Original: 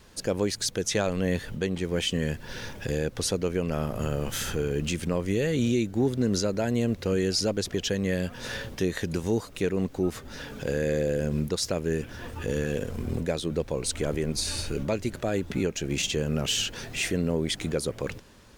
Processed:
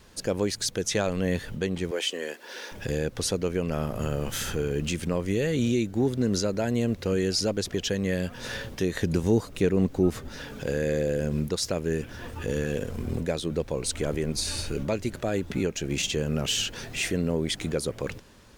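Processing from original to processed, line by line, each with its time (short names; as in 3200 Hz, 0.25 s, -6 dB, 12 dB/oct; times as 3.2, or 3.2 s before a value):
1.91–2.72 HPF 340 Hz 24 dB/oct
8.95–10.29 low shelf 500 Hz +5.5 dB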